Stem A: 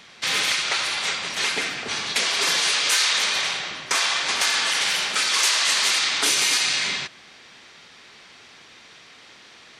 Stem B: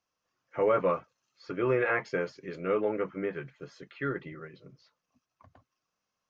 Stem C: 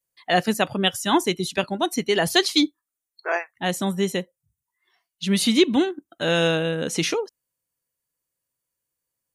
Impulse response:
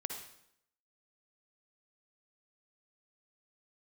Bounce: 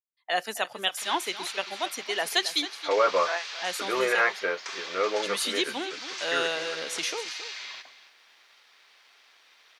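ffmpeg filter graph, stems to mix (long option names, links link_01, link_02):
-filter_complex "[0:a]lowpass=frequency=6200:width=0.5412,lowpass=frequency=6200:width=1.3066,acompressor=threshold=-31dB:ratio=2,aeval=exprs='sgn(val(0))*max(abs(val(0))-0.00112,0)':channel_layout=same,adelay=750,volume=-15dB,asplit=2[link_01][link_02];[link_02]volume=-14dB[link_03];[1:a]adelay=2300,volume=0dB[link_04];[2:a]agate=range=-15dB:threshold=-41dB:ratio=16:detection=peak,volume=-11.5dB,asplit=3[link_05][link_06][link_07];[link_06]volume=-13dB[link_08];[link_07]apad=whole_len=465128[link_09];[link_01][link_09]sidechaincompress=threshold=-30dB:ratio=8:attack=38:release=820[link_10];[link_03][link_08]amix=inputs=2:normalize=0,aecho=0:1:271:1[link_11];[link_10][link_04][link_05][link_11]amix=inputs=4:normalize=0,highpass=620,dynaudnorm=framelen=140:gausssize=3:maxgain=6.5dB"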